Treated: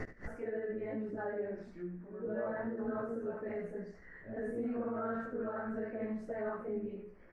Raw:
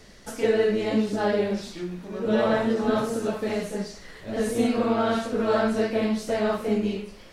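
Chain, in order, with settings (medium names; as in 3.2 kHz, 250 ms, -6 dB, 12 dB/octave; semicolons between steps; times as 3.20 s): resonances exaggerated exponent 1.5; resonant high shelf 2.5 kHz -12.5 dB, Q 3; peak limiter -17.5 dBFS, peak gain reduction 7 dB; inverted gate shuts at -41 dBFS, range -25 dB; doubling 17 ms -4 dB; delay 74 ms -11.5 dB; trim +11 dB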